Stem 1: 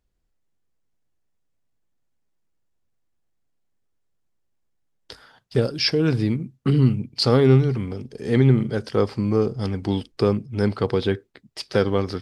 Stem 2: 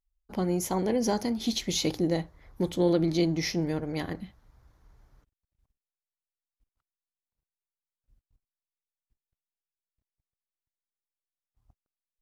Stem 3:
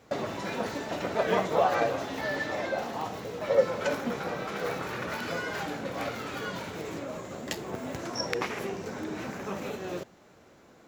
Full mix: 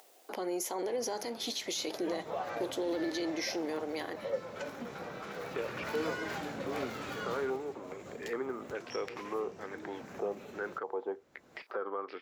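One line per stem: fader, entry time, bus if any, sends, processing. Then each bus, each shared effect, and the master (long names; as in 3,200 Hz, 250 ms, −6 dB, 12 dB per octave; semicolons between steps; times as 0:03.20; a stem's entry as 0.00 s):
−13.0 dB, 0.00 s, bus A, no send, de-essing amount 85%; low-pass on a step sequencer 2.4 Hz 730–2,500 Hz
+1.0 dB, 0.00 s, bus A, no send, no processing
0:01.79 −22 dB → 0:02.42 −12.5 dB → 0:05.33 −12.5 dB → 0:05.91 −5 dB → 0:07.32 −5 dB → 0:07.66 −15 dB, 0.75 s, no bus, no send, no processing
bus A: 0.0 dB, high-pass filter 360 Hz 24 dB per octave; brickwall limiter −26.5 dBFS, peak gain reduction 11 dB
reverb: not used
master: upward compression, threshold −36 dBFS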